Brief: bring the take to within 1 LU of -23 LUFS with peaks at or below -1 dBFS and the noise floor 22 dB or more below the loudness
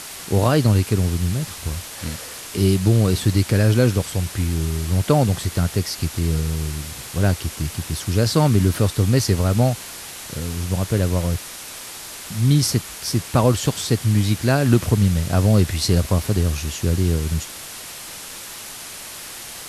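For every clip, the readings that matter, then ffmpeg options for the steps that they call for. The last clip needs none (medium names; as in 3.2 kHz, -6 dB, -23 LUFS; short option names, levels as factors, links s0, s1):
noise floor -36 dBFS; noise floor target -43 dBFS; loudness -20.5 LUFS; peak level -3.0 dBFS; loudness target -23.0 LUFS
-> -af "afftdn=nr=7:nf=-36"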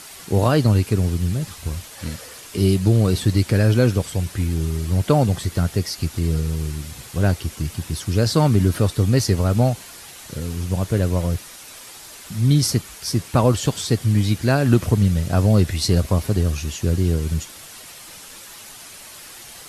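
noise floor -40 dBFS; noise floor target -43 dBFS
-> -af "afftdn=nr=6:nf=-40"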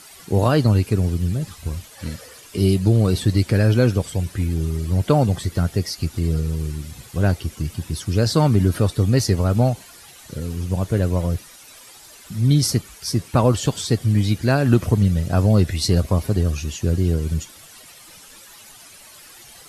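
noise floor -45 dBFS; loudness -20.5 LUFS; peak level -3.0 dBFS; loudness target -23.0 LUFS
-> -af "volume=0.75"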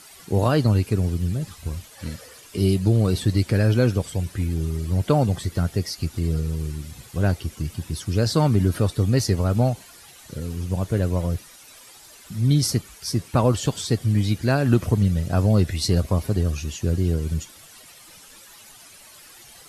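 loudness -23.0 LUFS; peak level -5.5 dBFS; noise floor -47 dBFS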